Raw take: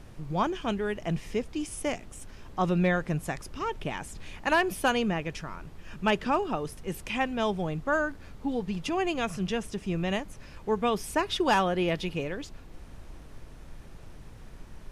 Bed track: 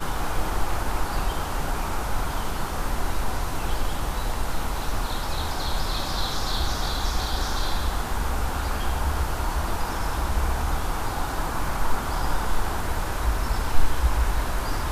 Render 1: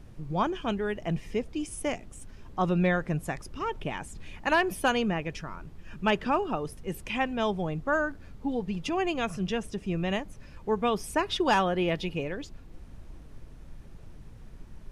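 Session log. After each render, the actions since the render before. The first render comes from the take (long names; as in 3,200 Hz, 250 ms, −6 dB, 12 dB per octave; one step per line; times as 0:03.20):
broadband denoise 6 dB, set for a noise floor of −47 dBFS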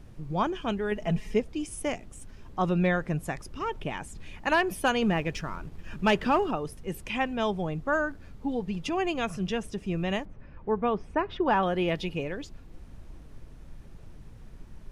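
0:00.91–0:01.40: comb filter 4.7 ms, depth 76%
0:05.02–0:06.51: leveller curve on the samples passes 1
0:10.25–0:11.63: low-pass filter 1,800 Hz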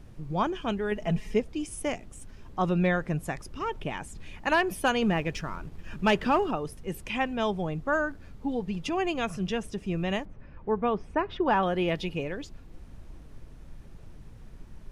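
no processing that can be heard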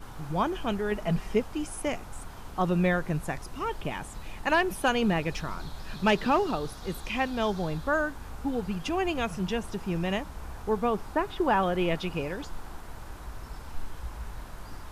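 mix in bed track −17 dB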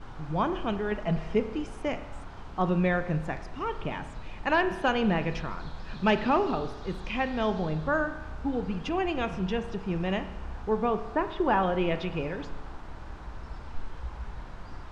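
high-frequency loss of the air 130 metres
spring reverb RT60 1 s, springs 32 ms, chirp 30 ms, DRR 10 dB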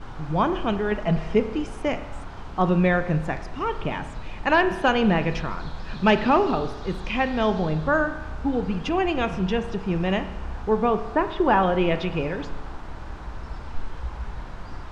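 level +5.5 dB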